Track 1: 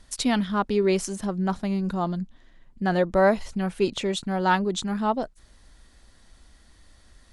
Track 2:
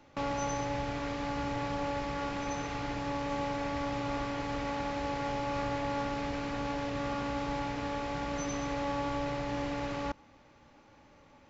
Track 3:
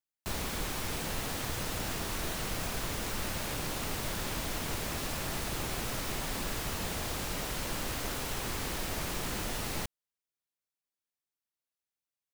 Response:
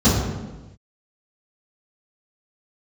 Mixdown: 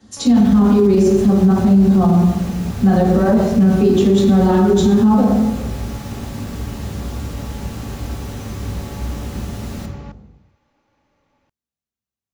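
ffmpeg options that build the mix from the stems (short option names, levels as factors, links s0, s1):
-filter_complex "[0:a]highpass=180,alimiter=limit=0.158:level=0:latency=1:release=149,volume=0.376,asplit=2[s0][s1];[s1]volume=0.596[s2];[1:a]volume=0.473[s3];[2:a]volume=0.668,asplit=2[s4][s5];[s5]volume=0.112[s6];[3:a]atrim=start_sample=2205[s7];[s2][s6]amix=inputs=2:normalize=0[s8];[s8][s7]afir=irnorm=-1:irlink=0[s9];[s0][s3][s4][s9]amix=inputs=4:normalize=0,alimiter=limit=0.531:level=0:latency=1:release=35"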